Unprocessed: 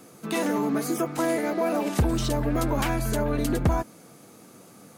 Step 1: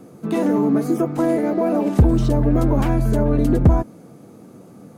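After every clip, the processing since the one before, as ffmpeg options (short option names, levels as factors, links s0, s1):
-af "tiltshelf=f=970:g=8.5,volume=1.19"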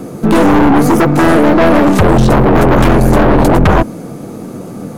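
-af "aeval=exprs='0.531*sin(PI/2*3.55*val(0)/0.531)':c=same,aeval=exprs='(tanh(2.82*val(0)+0.55)-tanh(0.55))/2.82':c=same,volume=1.78"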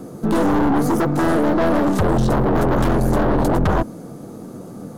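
-af "equalizer=f=2400:t=o:w=0.64:g=-7,volume=0.355"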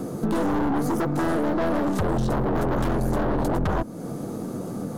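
-af "acompressor=threshold=0.0316:ratio=2.5,volume=1.58"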